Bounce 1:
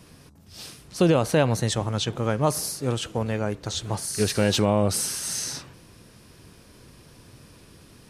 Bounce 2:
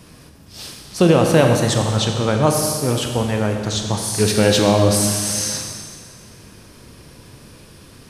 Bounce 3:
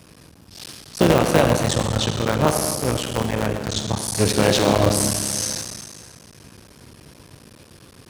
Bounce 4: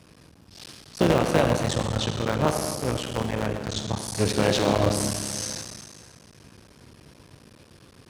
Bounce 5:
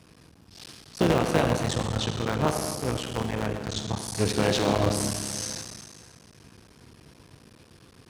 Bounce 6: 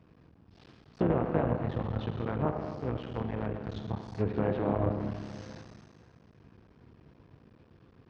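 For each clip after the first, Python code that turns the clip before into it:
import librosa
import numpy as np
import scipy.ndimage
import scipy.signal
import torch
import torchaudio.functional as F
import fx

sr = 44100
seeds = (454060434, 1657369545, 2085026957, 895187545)

y1 = fx.rev_schroeder(x, sr, rt60_s=1.9, comb_ms=29, drr_db=3.0)
y1 = F.gain(torch.from_numpy(y1), 5.5).numpy()
y2 = fx.cycle_switch(y1, sr, every=3, mode='muted')
y2 = scipy.signal.sosfilt(scipy.signal.butter(2, 57.0, 'highpass', fs=sr, output='sos'), y2)
y2 = F.gain(torch.from_numpy(y2), -1.0).numpy()
y3 = fx.high_shelf(y2, sr, hz=10000.0, db=-9.5)
y3 = F.gain(torch.from_numpy(y3), -4.5).numpy()
y4 = fx.notch(y3, sr, hz=570.0, q=12.0)
y4 = F.gain(torch.from_numpy(y4), -1.5).numpy()
y5 = fx.env_lowpass_down(y4, sr, base_hz=1900.0, full_db=-20.5)
y5 = fx.spacing_loss(y5, sr, db_at_10k=37)
y5 = F.gain(torch.from_numpy(y5), -3.5).numpy()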